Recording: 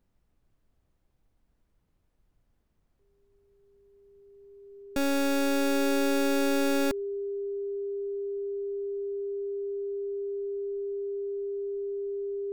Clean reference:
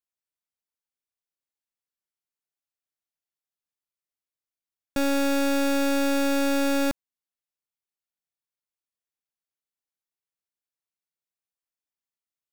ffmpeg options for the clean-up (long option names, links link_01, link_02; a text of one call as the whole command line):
ffmpeg -i in.wav -af "bandreject=frequency=400:width=30,agate=range=-21dB:threshold=-63dB,asetnsamples=nb_out_samples=441:pad=0,asendcmd='4.82 volume volume 3dB',volume=0dB" out.wav